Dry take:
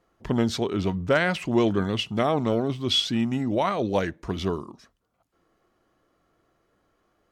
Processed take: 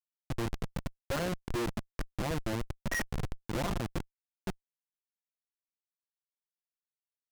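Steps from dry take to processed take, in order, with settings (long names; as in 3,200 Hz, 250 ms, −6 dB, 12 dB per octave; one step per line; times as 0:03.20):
pitch shifter gated in a rhythm −10 semitones, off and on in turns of 553 ms
comb filter 5.8 ms, depth 81%
bit-depth reduction 6 bits, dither none
comparator with hysteresis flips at −18.5 dBFS
highs frequency-modulated by the lows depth 0.28 ms
level −6 dB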